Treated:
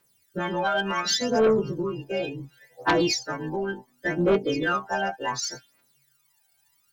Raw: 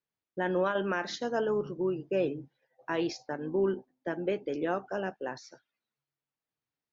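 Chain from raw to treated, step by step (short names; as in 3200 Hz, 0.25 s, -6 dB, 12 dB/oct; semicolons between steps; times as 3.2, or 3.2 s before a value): frequency quantiser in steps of 2 st; compressor 2.5:1, threshold -42 dBFS, peak gain reduction 12 dB; phaser 0.69 Hz, delay 1.4 ms, feedback 77%; sine folder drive 8 dB, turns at -17 dBFS; gain +2 dB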